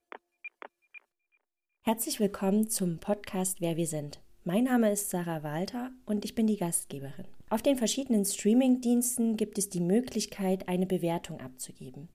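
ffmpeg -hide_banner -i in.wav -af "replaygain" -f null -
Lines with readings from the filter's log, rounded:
track_gain = +9.8 dB
track_peak = 0.152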